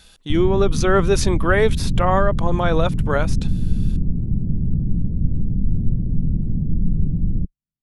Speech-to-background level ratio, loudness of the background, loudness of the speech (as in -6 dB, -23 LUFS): 3.5 dB, -24.0 LUFS, -20.5 LUFS